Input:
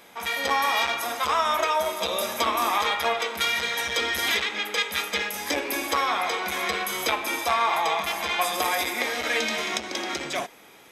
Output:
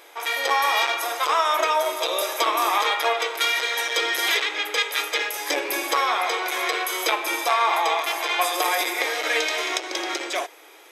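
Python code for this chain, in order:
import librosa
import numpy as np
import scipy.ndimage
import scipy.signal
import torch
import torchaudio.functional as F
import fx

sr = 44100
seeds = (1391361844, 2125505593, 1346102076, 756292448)

y = fx.brickwall_highpass(x, sr, low_hz=290.0)
y = y * 10.0 ** (2.5 / 20.0)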